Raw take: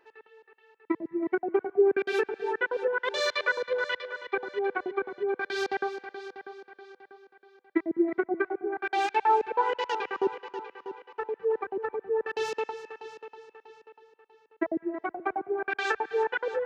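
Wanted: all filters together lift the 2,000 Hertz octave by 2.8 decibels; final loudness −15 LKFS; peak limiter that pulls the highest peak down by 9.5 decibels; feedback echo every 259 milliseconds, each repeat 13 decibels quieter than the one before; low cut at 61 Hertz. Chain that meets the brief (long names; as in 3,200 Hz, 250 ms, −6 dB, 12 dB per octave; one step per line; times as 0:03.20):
high-pass filter 61 Hz
parametric band 2,000 Hz +4 dB
brickwall limiter −20.5 dBFS
repeating echo 259 ms, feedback 22%, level −13 dB
level +16 dB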